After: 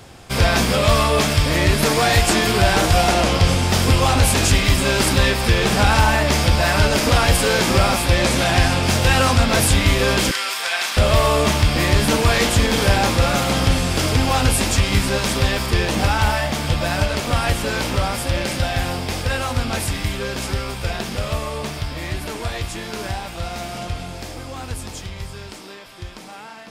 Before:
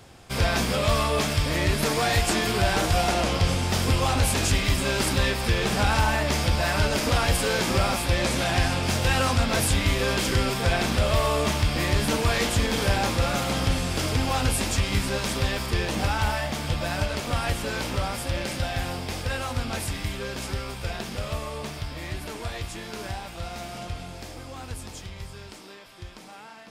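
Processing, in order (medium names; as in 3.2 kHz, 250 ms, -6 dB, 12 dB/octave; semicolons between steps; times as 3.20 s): 10.31–10.97 s: high-pass 1.2 kHz 12 dB/octave; trim +7 dB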